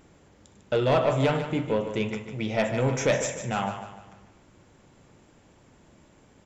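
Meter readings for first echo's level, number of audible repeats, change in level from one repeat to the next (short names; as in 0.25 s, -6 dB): -9.5 dB, 4, -7.5 dB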